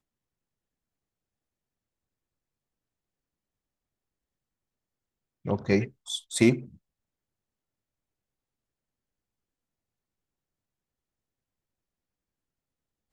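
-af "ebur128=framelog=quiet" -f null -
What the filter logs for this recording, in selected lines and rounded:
Integrated loudness:
  I:         -26.9 LUFS
  Threshold: -37.7 LUFS
Loudness range:
  LRA:        10.7 LU
  Threshold: -51.8 LUFS
  LRA low:   -40.9 LUFS
  LRA high:  -30.2 LUFS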